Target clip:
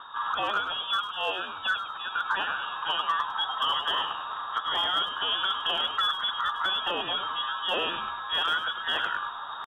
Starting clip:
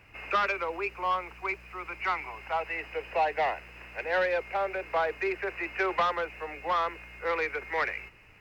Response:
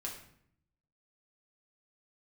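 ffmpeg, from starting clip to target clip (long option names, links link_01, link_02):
-filter_complex "[0:a]aexciter=amount=15.8:drive=6.1:freq=2600,areverse,acompressor=mode=upward:threshold=-26dB:ratio=2.5,areverse,equalizer=frequency=100:width_type=o:width=0.67:gain=10,equalizer=frequency=400:width_type=o:width=0.67:gain=8,equalizer=frequency=1600:width_type=o:width=0.67:gain=-7,lowpass=frequency=3200:width_type=q:width=0.5098,lowpass=frequency=3200:width_type=q:width=0.6013,lowpass=frequency=3200:width_type=q:width=0.9,lowpass=frequency=3200:width_type=q:width=2.563,afreqshift=-3800,equalizer=frequency=2300:width=4.8:gain=-9.5,atempo=0.87,acrossover=split=310[link_01][link_02];[link_01]acompressor=threshold=-56dB:ratio=6[link_03];[link_02]alimiter=limit=-18dB:level=0:latency=1:release=408[link_04];[link_03][link_04]amix=inputs=2:normalize=0,volume=19.5dB,asoftclip=hard,volume=-19.5dB,asplit=5[link_05][link_06][link_07][link_08][link_09];[link_06]adelay=101,afreqshift=-130,volume=-9dB[link_10];[link_07]adelay=202,afreqshift=-260,volume=-18.1dB[link_11];[link_08]adelay=303,afreqshift=-390,volume=-27.2dB[link_12];[link_09]adelay=404,afreqshift=-520,volume=-36.4dB[link_13];[link_05][link_10][link_11][link_12][link_13]amix=inputs=5:normalize=0"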